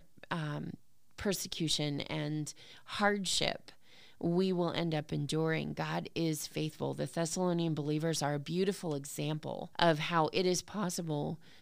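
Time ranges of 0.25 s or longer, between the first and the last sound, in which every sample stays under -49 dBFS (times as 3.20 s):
0.75–1.18 s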